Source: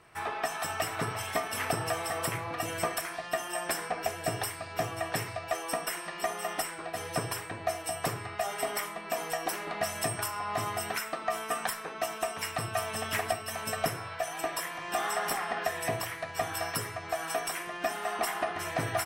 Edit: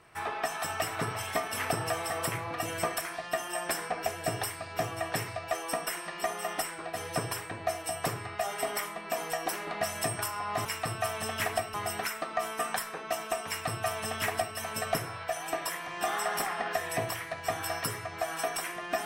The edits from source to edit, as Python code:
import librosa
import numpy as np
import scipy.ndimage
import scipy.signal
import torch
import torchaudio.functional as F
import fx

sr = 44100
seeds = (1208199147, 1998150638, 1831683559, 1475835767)

y = fx.edit(x, sr, fx.duplicate(start_s=12.38, length_s=1.09, to_s=10.65), tone=tone)